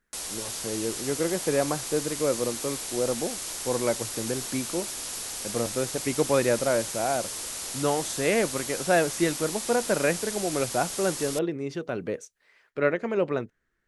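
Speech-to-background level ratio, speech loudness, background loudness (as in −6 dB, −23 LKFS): 3.5 dB, −28.5 LKFS, −32.0 LKFS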